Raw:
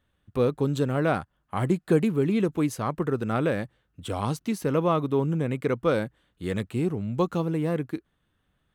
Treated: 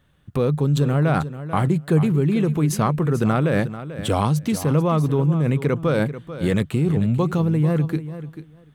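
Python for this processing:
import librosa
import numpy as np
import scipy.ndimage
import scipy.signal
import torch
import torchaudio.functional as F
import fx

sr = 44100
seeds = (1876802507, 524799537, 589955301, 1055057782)

p1 = fx.peak_eq(x, sr, hz=150.0, db=12.5, octaves=0.27)
p2 = fx.over_compress(p1, sr, threshold_db=-28.0, ratio=-1.0)
p3 = p1 + (p2 * 10.0 ** (2.5 / 20.0))
p4 = fx.echo_feedback(p3, sr, ms=440, feedback_pct=15, wet_db=-13.0)
y = p4 * 10.0 ** (-1.5 / 20.0)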